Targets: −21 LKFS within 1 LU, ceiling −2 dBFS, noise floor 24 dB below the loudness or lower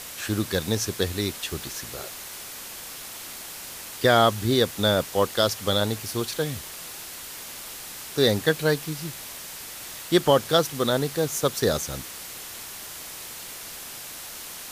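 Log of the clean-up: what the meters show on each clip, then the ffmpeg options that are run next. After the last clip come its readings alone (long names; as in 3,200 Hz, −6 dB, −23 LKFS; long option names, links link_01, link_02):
background noise floor −39 dBFS; target noise floor −51 dBFS; integrated loudness −26.5 LKFS; sample peak −6.5 dBFS; target loudness −21.0 LKFS
→ -af "afftdn=noise_reduction=12:noise_floor=-39"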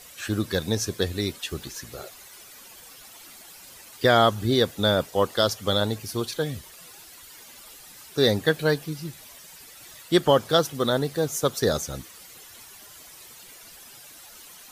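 background noise floor −47 dBFS; target noise floor −48 dBFS
→ -af "afftdn=noise_reduction=6:noise_floor=-47"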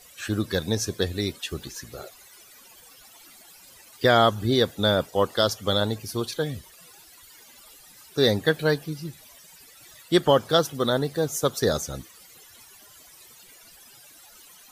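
background noise floor −51 dBFS; integrated loudness −24.5 LKFS; sample peak −6.5 dBFS; target loudness −21.0 LKFS
→ -af "volume=3.5dB"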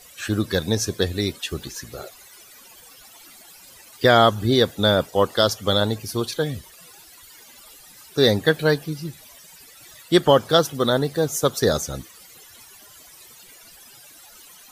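integrated loudness −21.0 LKFS; sample peak −3.0 dBFS; background noise floor −48 dBFS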